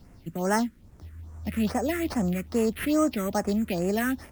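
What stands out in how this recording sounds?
aliases and images of a low sample rate 7200 Hz, jitter 0%; phasing stages 4, 2.4 Hz, lowest notch 750–4000 Hz; a quantiser's noise floor 12-bit, dither none; MP3

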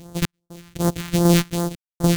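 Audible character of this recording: a buzz of ramps at a fixed pitch in blocks of 256 samples; random-step tremolo 4 Hz, depth 100%; aliases and images of a low sample rate 5200 Hz, jitter 20%; phasing stages 2, 2.6 Hz, lowest notch 500–2400 Hz

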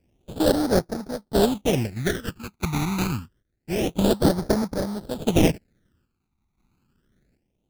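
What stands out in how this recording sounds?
chopped level 0.76 Hz, depth 60%, duty 60%; aliases and images of a low sample rate 1100 Hz, jitter 20%; phasing stages 12, 0.27 Hz, lowest notch 530–2800 Hz

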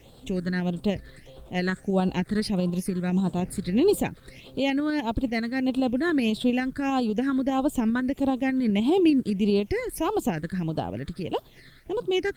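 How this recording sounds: tremolo saw up 10 Hz, depth 35%; phasing stages 8, 1.6 Hz, lowest notch 790–2000 Hz; a quantiser's noise floor 12-bit, dither triangular; Opus

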